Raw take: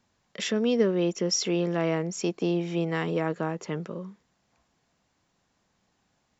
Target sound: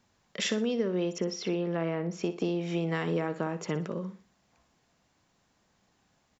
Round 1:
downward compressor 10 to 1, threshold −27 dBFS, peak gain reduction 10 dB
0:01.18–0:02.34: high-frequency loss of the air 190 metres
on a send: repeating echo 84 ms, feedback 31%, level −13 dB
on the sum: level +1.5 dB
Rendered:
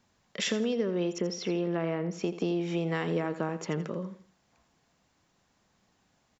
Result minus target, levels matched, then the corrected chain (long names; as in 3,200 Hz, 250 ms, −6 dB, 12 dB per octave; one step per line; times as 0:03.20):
echo 24 ms late
downward compressor 10 to 1, threshold −27 dBFS, peak gain reduction 10 dB
0:01.18–0:02.34: high-frequency loss of the air 190 metres
on a send: repeating echo 60 ms, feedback 31%, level −13 dB
on the sum: level +1.5 dB